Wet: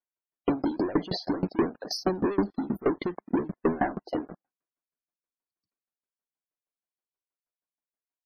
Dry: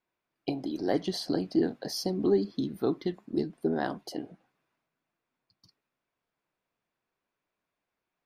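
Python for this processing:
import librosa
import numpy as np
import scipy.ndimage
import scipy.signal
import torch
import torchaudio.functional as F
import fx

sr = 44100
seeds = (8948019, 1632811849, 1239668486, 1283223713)

y = fx.graphic_eq_10(x, sr, hz=(125, 4000, 8000), db=(-8, -5, -10))
y = fx.leveller(y, sr, passes=5)
y = fx.spec_topn(y, sr, count=64)
y = fx.tremolo_decay(y, sr, direction='decaying', hz=6.3, depth_db=23)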